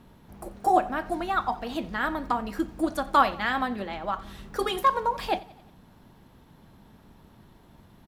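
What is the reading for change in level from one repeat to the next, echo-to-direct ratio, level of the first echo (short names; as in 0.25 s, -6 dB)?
-5.0 dB, -19.5 dB, -21.0 dB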